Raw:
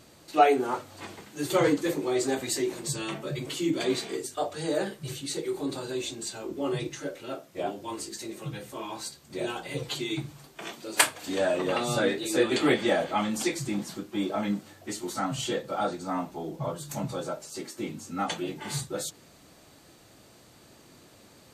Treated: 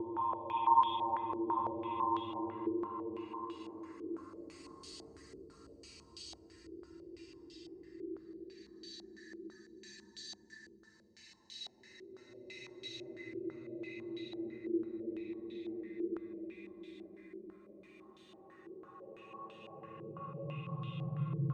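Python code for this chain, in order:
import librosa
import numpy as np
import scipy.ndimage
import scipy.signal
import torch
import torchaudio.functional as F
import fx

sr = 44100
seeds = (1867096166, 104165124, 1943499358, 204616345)

y = fx.bin_expand(x, sr, power=1.5)
y = fx.paulstretch(y, sr, seeds[0], factor=36.0, window_s=0.1, from_s=7.87)
y = fx.filter_held_lowpass(y, sr, hz=6.0, low_hz=410.0, high_hz=3300.0)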